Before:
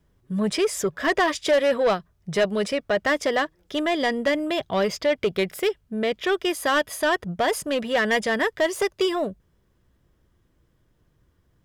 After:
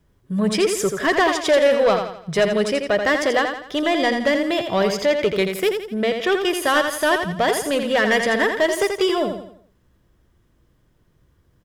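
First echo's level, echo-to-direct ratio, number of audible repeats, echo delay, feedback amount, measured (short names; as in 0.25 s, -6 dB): -6.5 dB, -5.5 dB, 4, 84 ms, 41%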